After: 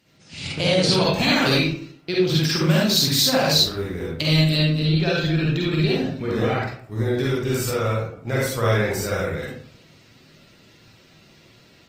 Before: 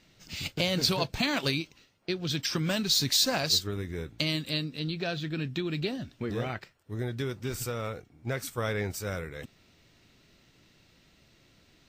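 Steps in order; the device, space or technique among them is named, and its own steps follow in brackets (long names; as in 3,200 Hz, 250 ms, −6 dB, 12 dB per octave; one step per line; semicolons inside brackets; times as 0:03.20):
far-field microphone of a smart speaker (convolution reverb RT60 0.60 s, pre-delay 42 ms, DRR −5 dB; high-pass filter 86 Hz 12 dB per octave; automatic gain control gain up to 4.5 dB; Opus 24 kbit/s 48,000 Hz)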